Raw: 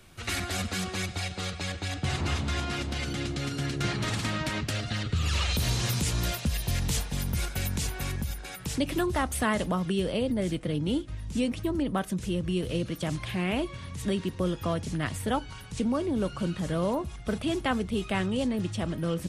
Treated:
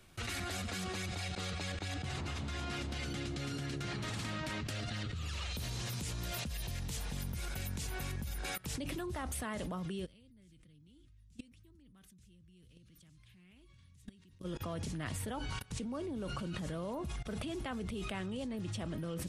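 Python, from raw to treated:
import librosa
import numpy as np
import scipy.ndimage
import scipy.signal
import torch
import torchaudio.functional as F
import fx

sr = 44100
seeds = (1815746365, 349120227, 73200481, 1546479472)

y = fx.tone_stack(x, sr, knobs='6-0-2', at=(10.04, 14.44), fade=0.02)
y = fx.level_steps(y, sr, step_db=22)
y = y * 10.0 ** (5.0 / 20.0)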